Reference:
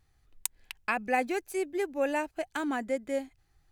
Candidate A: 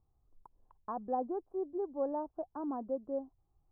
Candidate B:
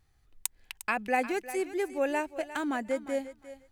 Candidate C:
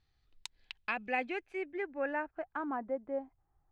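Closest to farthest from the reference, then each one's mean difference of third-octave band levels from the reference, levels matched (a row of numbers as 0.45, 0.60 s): B, C, A; 2.5, 6.0, 10.0 dB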